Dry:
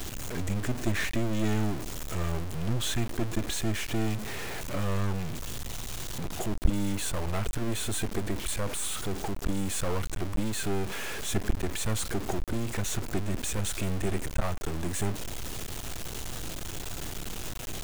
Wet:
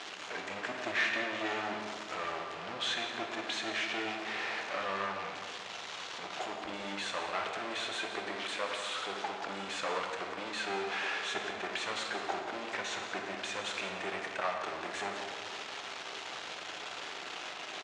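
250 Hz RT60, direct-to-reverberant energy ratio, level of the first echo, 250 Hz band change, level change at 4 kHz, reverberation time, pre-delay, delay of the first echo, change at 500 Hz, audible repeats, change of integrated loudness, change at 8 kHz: 2.4 s, 1.5 dB, -12.5 dB, -12.5 dB, +1.0 dB, 1.9 s, 5 ms, 176 ms, -3.0 dB, 1, -4.0 dB, -12.0 dB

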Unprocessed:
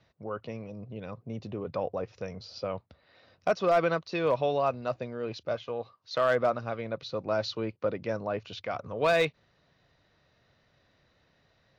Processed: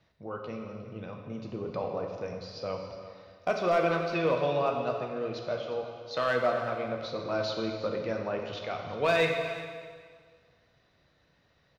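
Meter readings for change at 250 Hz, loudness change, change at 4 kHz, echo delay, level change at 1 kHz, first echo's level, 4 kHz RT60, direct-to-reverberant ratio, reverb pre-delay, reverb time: +0.5 dB, -0.5 dB, +0.5 dB, 358 ms, -0.5 dB, -15.0 dB, 1.7 s, 1.0 dB, 5 ms, 1.8 s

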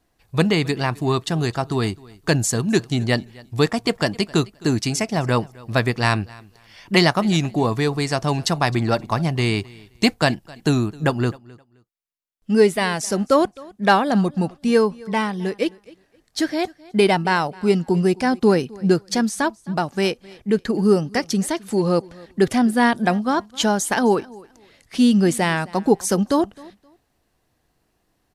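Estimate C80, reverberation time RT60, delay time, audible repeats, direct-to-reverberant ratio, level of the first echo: no reverb, no reverb, 262 ms, 1, no reverb, -23.0 dB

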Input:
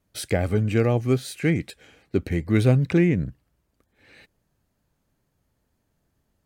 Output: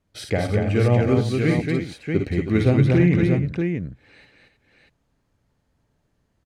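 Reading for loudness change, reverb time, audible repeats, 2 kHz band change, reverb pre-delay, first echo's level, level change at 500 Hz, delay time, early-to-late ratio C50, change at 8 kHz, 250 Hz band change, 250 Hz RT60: +2.0 dB, no reverb, 4, +3.0 dB, no reverb, -7.0 dB, +3.0 dB, 51 ms, no reverb, no reading, +3.5 dB, no reverb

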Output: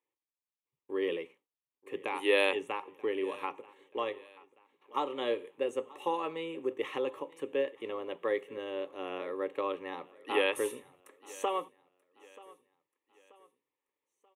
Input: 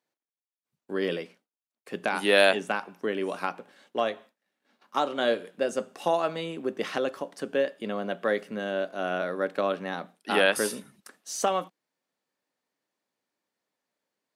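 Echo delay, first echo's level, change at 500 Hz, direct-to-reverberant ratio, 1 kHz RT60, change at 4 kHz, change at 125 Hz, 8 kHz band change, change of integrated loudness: 933 ms, -21.5 dB, -5.5 dB, no reverb, no reverb, -8.0 dB, -16.0 dB, -12.0 dB, -6.0 dB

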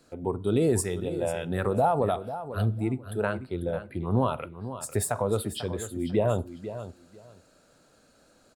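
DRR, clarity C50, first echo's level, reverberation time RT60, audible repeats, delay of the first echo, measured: no reverb, no reverb, -12.0 dB, no reverb, 2, 494 ms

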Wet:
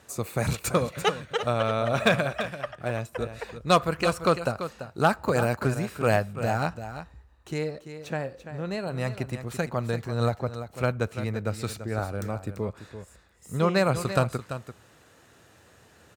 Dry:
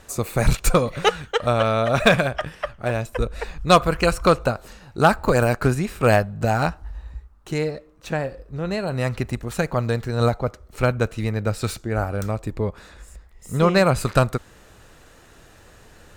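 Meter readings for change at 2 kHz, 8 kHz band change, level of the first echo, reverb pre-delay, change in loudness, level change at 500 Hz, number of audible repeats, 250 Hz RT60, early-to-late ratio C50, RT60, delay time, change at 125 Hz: -5.5 dB, -5.5 dB, -11.0 dB, no reverb, -6.0 dB, -5.5 dB, 1, no reverb, no reverb, no reverb, 339 ms, -6.0 dB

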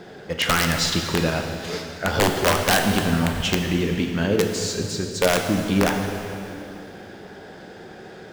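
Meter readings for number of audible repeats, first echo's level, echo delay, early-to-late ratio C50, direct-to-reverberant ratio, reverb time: no echo, no echo, no echo, 5.0 dB, 3.0 dB, 2.9 s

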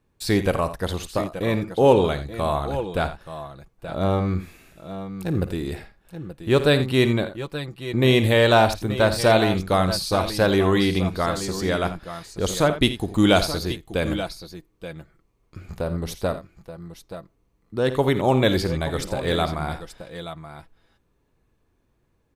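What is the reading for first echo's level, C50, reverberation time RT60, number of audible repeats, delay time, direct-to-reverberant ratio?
-14.5 dB, no reverb, no reverb, 3, 54 ms, no reverb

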